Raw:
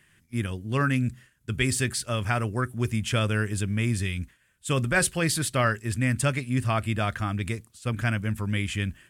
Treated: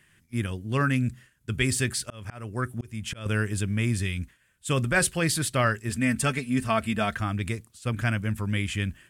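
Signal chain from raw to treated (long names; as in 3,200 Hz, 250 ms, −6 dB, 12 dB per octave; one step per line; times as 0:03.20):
0:01.86–0:03.26: volume swells 382 ms
0:05.89–0:07.17: comb filter 4.5 ms, depth 61%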